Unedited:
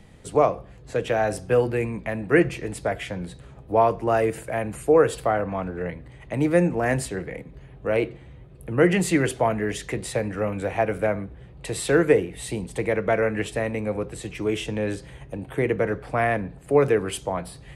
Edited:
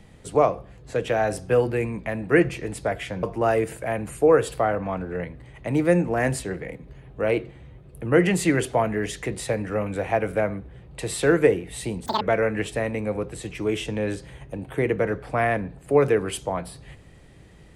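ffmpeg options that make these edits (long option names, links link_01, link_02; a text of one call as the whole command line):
ffmpeg -i in.wav -filter_complex "[0:a]asplit=4[link_01][link_02][link_03][link_04];[link_01]atrim=end=3.232[link_05];[link_02]atrim=start=3.888:end=12.724[link_06];[link_03]atrim=start=12.72:end=13.01,asetpts=PTS-STARTPTS,asetrate=85113,aresample=44100,atrim=end_sample=6626,asetpts=PTS-STARTPTS[link_07];[link_04]atrim=start=13.006[link_08];[link_05][link_06]acrossfade=duration=0.004:curve1=hsin:curve2=hsin[link_09];[link_09][link_07]acrossfade=duration=0.004:curve1=hsin:curve2=hsin[link_10];[link_10][link_08]acrossfade=duration=0.004:curve1=hsin:curve2=hsin" out.wav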